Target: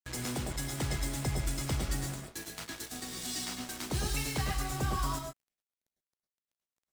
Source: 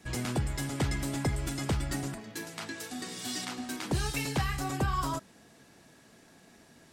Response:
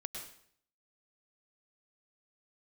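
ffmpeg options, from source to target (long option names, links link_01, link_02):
-filter_complex "[0:a]bass=frequency=250:gain=-4,treble=frequency=4000:gain=5,acrossover=split=140|2900[link_01][link_02][link_03];[link_01]dynaudnorm=framelen=490:gausssize=3:maxgain=7dB[link_04];[link_04][link_02][link_03]amix=inputs=3:normalize=0,aeval=exprs='val(0)+0.00355*(sin(2*PI*60*n/s)+sin(2*PI*2*60*n/s)/2+sin(2*PI*3*60*n/s)/3+sin(2*PI*4*60*n/s)/4+sin(2*PI*5*60*n/s)/5)':channel_layout=same,acrusher=bits=5:mix=0:aa=0.5[link_05];[1:a]atrim=start_sample=2205,atrim=end_sample=6174[link_06];[link_05][link_06]afir=irnorm=-1:irlink=0,volume=-1.5dB"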